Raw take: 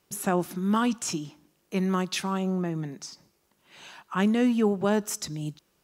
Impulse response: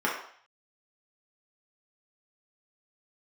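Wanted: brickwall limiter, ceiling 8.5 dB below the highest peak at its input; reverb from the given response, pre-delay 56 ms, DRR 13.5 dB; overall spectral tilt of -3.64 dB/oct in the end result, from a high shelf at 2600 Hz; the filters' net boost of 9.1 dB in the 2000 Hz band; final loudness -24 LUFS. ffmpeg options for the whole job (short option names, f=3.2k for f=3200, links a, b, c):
-filter_complex "[0:a]equalizer=f=2k:t=o:g=8.5,highshelf=f=2.6k:g=8,alimiter=limit=-13.5dB:level=0:latency=1,asplit=2[a][b];[1:a]atrim=start_sample=2205,adelay=56[c];[b][c]afir=irnorm=-1:irlink=0,volume=-26dB[d];[a][d]amix=inputs=2:normalize=0,volume=2.5dB"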